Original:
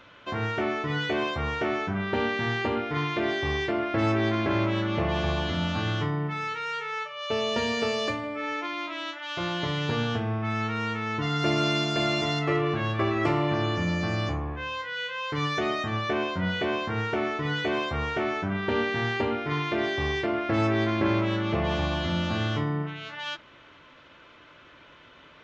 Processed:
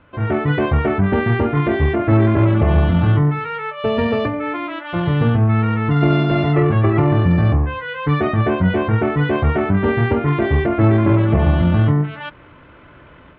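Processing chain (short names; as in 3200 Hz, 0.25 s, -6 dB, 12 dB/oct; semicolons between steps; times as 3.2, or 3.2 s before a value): Bessel low-pass 1900 Hz, order 4; low shelf 200 Hz +11.5 dB; AGC gain up to 8.5 dB; tempo 1.9×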